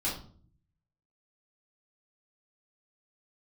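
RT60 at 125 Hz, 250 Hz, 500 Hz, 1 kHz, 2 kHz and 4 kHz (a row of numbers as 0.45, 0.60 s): 1.0, 0.80, 0.55, 0.45, 0.35, 0.35 s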